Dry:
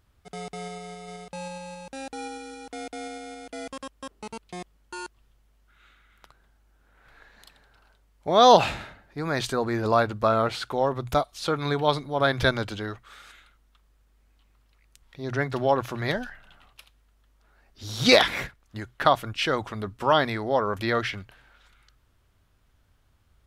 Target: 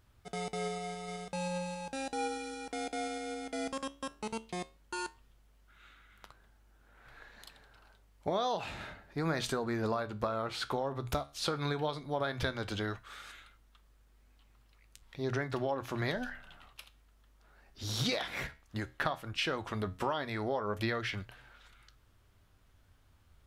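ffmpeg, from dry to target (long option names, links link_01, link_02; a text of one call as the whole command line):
ffmpeg -i in.wav -af "acompressor=threshold=-29dB:ratio=20,flanger=delay=8.1:depth=7:regen=77:speed=0.14:shape=triangular,volume=4dB" out.wav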